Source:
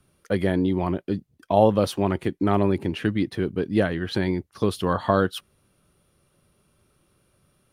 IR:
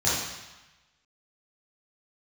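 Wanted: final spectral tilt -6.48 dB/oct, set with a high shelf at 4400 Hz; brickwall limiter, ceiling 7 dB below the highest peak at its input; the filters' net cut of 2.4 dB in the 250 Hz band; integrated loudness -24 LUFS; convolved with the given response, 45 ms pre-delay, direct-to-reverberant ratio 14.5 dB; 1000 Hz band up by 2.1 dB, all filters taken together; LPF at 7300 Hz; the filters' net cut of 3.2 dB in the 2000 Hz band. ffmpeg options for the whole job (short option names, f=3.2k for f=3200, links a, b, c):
-filter_complex "[0:a]lowpass=7.3k,equalizer=f=250:t=o:g=-3.5,equalizer=f=1k:t=o:g=4.5,equalizer=f=2k:t=o:g=-5.5,highshelf=f=4.4k:g=-5,alimiter=limit=-11dB:level=0:latency=1,asplit=2[a][b];[1:a]atrim=start_sample=2205,adelay=45[c];[b][c]afir=irnorm=-1:irlink=0,volume=-28dB[d];[a][d]amix=inputs=2:normalize=0,volume=2dB"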